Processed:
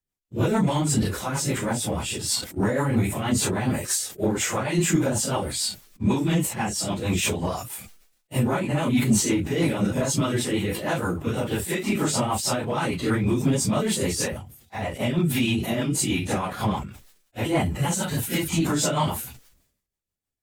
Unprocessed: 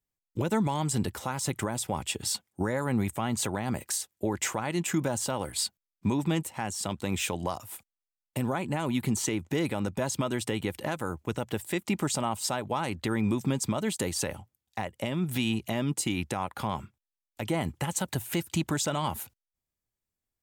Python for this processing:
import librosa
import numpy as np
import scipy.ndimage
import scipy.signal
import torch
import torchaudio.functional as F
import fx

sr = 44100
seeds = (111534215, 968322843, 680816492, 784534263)

y = fx.phase_scramble(x, sr, seeds[0], window_ms=100)
y = fx.leveller(y, sr, passes=1)
y = fx.rotary(y, sr, hz=6.3)
y = fx.sustainer(y, sr, db_per_s=81.0)
y = y * librosa.db_to_amplitude(4.5)